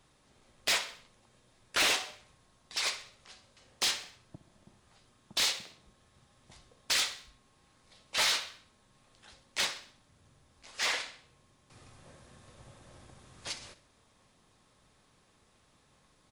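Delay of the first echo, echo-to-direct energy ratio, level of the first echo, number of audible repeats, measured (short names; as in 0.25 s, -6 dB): 64 ms, -14.5 dB, -15.5 dB, 3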